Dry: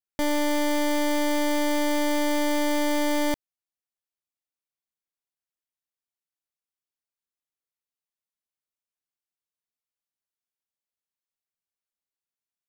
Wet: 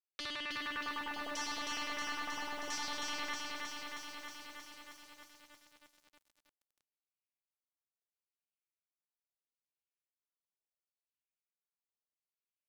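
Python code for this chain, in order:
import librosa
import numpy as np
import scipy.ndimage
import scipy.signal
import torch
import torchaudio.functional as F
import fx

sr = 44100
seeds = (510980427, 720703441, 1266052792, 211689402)

p1 = fx.wiener(x, sr, points=25)
p2 = fx.highpass(p1, sr, hz=360.0, slope=6)
p3 = fx.band_shelf(p2, sr, hz=3500.0, db=11.5, octaves=2.5)
p4 = fx.rider(p3, sr, range_db=10, speed_s=2.0)
p5 = fx.filter_lfo_notch(p4, sr, shape='square', hz=9.9, low_hz=750.0, high_hz=3500.0, q=2.6)
p6 = (np.mod(10.0 ** (29.5 / 20.0) * p5 + 1.0, 2.0) - 1.0) / 10.0 ** (29.5 / 20.0)
p7 = fx.filter_lfo_lowpass(p6, sr, shape='saw_down', hz=0.74, low_hz=590.0, high_hz=6100.0, q=2.7)
p8 = p7 + fx.echo_feedback(p7, sr, ms=253, feedback_pct=55, wet_db=-23.0, dry=0)
p9 = fx.echo_crushed(p8, sr, ms=316, feedback_pct=80, bits=9, wet_db=-3.0)
y = p9 * librosa.db_to_amplitude(-6.5)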